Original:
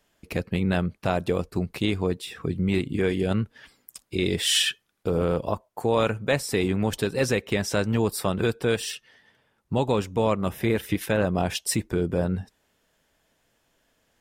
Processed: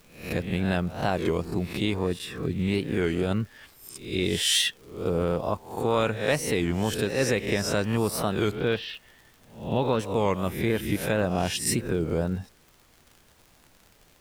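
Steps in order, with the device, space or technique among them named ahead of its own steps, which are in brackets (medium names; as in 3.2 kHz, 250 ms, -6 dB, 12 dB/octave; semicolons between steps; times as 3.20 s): reverse spectral sustain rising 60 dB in 0.49 s; 8.52–10.00 s: steep low-pass 4.1 kHz; warped LP (warped record 33 1/3 rpm, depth 160 cents; crackle 80 per s -38 dBFS; pink noise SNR 32 dB); trim -2.5 dB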